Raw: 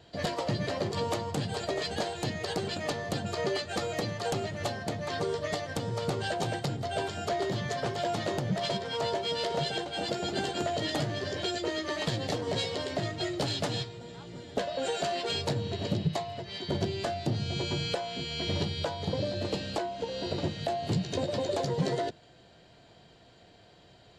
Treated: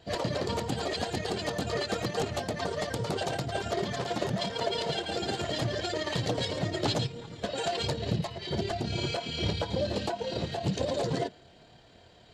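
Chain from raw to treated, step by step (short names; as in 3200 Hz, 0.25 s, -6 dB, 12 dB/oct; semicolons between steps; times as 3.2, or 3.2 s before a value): chorus voices 4, 0.84 Hz, delay 23 ms, depth 2.4 ms; granular stretch 0.51×, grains 56 ms; gain +5 dB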